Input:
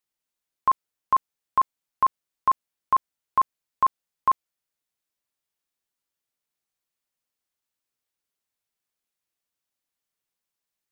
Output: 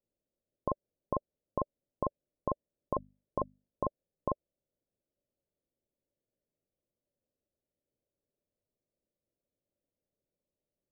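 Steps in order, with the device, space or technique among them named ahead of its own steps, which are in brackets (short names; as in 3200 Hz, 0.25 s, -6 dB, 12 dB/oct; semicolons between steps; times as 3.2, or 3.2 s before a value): under water (LPF 510 Hz 24 dB/oct; bell 580 Hz +10 dB 0.31 oct); 2.93–3.86 notches 50/100/150/200/250 Hz; gain +8 dB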